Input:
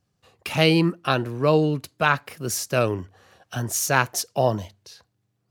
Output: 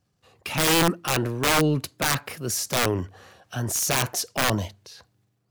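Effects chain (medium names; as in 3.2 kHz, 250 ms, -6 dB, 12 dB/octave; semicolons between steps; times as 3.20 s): integer overflow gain 14 dB; transient shaper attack -2 dB, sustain +6 dB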